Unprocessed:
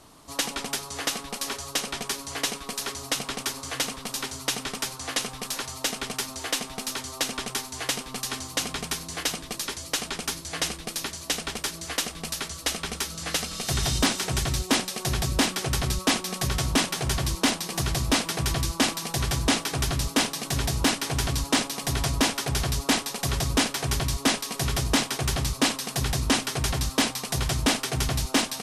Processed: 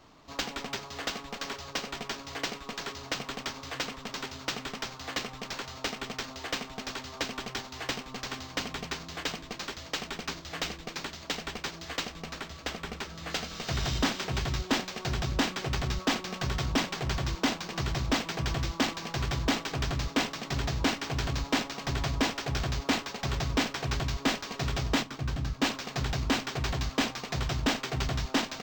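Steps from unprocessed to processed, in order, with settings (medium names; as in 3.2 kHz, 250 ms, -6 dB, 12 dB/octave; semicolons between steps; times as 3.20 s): 12.16–13.30 s: dynamic bell 5.3 kHz, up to -5 dB, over -40 dBFS, Q 0.73; 25.03–25.62 s: time-frequency box 330–11000 Hz -8 dB; decimation joined by straight lines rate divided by 4×; trim -4 dB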